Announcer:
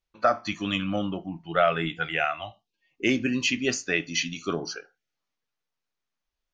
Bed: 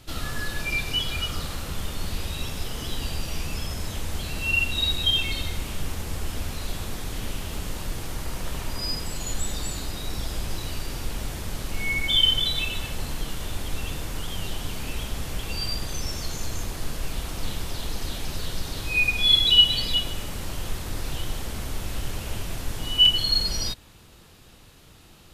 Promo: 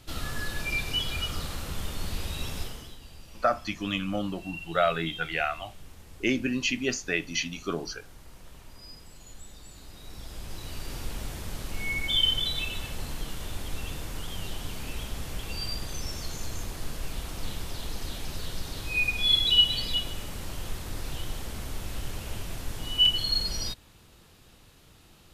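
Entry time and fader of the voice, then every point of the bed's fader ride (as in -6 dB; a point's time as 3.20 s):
3.20 s, -2.5 dB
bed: 2.61 s -3 dB
2.99 s -18 dB
9.63 s -18 dB
10.93 s -4.5 dB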